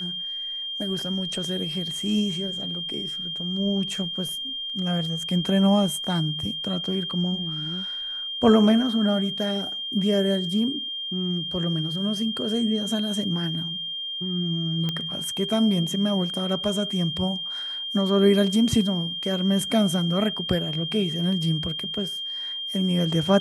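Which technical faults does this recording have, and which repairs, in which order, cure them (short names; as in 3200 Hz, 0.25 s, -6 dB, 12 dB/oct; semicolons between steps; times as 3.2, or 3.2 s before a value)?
tone 3200 Hz -29 dBFS
14.89 pop -14 dBFS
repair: de-click; notch 3200 Hz, Q 30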